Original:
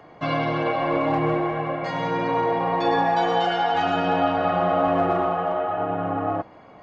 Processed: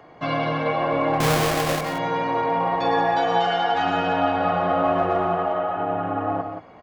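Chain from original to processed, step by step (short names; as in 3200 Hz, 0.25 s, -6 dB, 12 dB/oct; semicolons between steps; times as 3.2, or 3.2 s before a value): 1.2–1.81 half-waves squared off; notches 50/100/150/200/250/300/350 Hz; outdoor echo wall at 30 m, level -7 dB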